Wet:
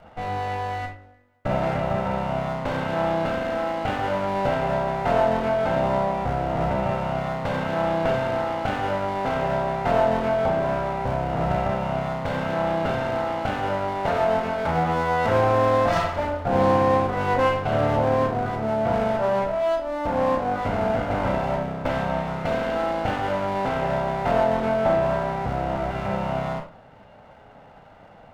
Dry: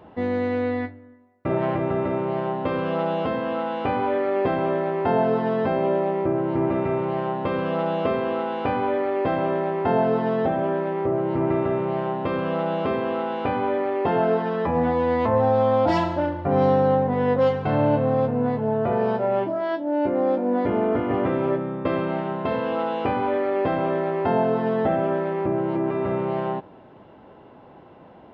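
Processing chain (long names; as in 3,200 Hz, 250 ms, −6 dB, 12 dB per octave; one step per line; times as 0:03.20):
lower of the sound and its delayed copy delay 1.4 ms
on a send: convolution reverb RT60 0.35 s, pre-delay 28 ms, DRR 3.5 dB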